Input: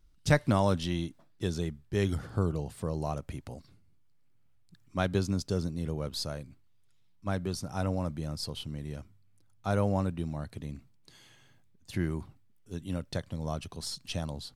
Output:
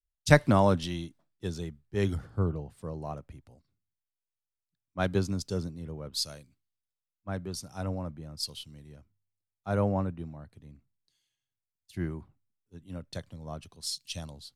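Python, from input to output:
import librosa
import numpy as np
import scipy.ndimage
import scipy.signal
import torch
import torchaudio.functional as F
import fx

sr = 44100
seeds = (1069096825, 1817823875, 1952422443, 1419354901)

y = fx.band_widen(x, sr, depth_pct=100)
y = y * librosa.db_to_amplitude(-3.5)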